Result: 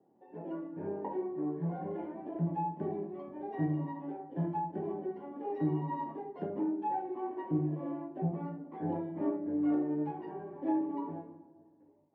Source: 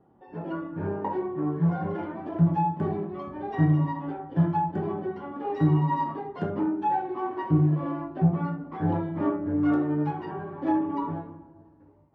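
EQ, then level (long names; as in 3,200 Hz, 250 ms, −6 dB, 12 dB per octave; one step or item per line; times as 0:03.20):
high-pass filter 88 Hz
three-way crossover with the lows and the highs turned down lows −15 dB, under 200 Hz, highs −17 dB, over 2,300 Hz
parametric band 1,300 Hz −14.5 dB 0.71 octaves
−4.5 dB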